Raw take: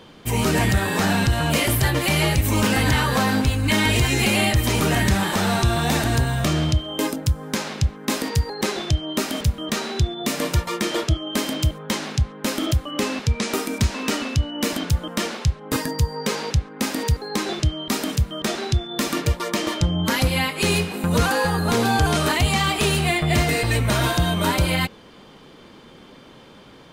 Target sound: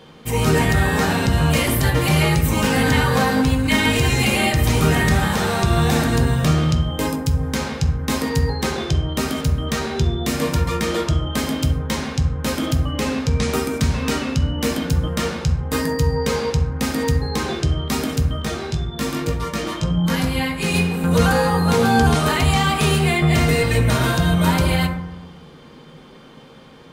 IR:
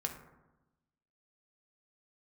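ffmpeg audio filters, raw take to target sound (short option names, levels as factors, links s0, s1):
-filter_complex "[0:a]asplit=3[s0][s1][s2];[s0]afade=t=out:st=18.36:d=0.02[s3];[s1]flanger=delay=18:depth=2:speed=1.8,afade=t=in:st=18.36:d=0.02,afade=t=out:st=20.73:d=0.02[s4];[s2]afade=t=in:st=20.73:d=0.02[s5];[s3][s4][s5]amix=inputs=3:normalize=0[s6];[1:a]atrim=start_sample=2205[s7];[s6][s7]afir=irnorm=-1:irlink=0"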